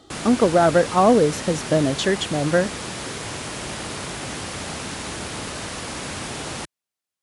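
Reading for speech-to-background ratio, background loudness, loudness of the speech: 10.5 dB, -30.0 LUFS, -19.5 LUFS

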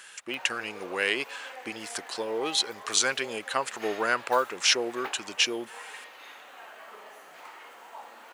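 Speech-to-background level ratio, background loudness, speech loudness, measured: 16.5 dB, -44.5 LUFS, -28.0 LUFS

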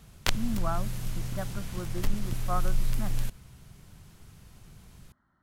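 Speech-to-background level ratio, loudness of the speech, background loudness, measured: -2.5 dB, -38.0 LUFS, -35.5 LUFS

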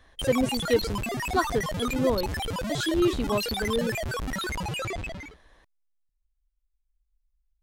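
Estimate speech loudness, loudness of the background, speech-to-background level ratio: -28.5 LUFS, -31.0 LUFS, 2.5 dB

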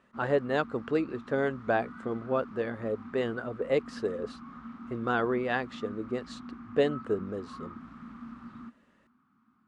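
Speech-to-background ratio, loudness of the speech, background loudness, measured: 13.5 dB, -31.5 LUFS, -45.0 LUFS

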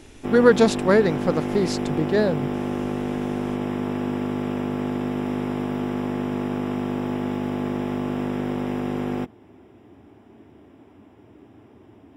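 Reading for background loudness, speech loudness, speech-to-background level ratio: -27.0 LUFS, -21.0 LUFS, 6.0 dB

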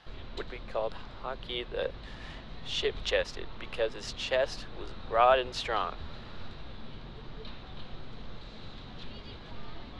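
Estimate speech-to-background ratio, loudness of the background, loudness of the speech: 15.0 dB, -46.5 LUFS, -31.5 LUFS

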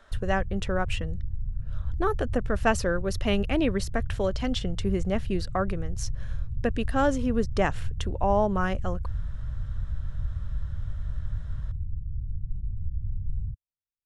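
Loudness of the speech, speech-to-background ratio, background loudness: -28.5 LUFS, 7.0 dB, -35.5 LUFS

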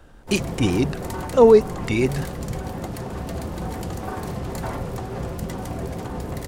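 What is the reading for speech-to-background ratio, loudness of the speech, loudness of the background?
11.5 dB, -19.5 LUFS, -31.0 LUFS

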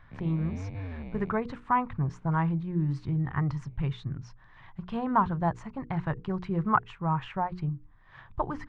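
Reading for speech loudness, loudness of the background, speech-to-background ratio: -30.5 LUFS, -40.5 LUFS, 10.0 dB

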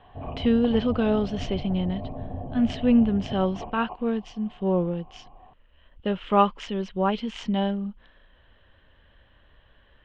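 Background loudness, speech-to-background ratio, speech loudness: -37.0 LUFS, 11.5 dB, -25.5 LUFS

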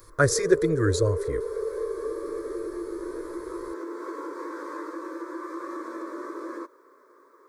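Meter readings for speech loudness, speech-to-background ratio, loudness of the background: -24.5 LUFS, 9.0 dB, -33.5 LUFS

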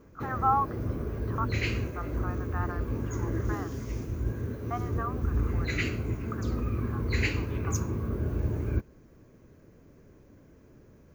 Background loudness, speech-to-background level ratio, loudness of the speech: -32.0 LUFS, -3.0 dB, -35.0 LUFS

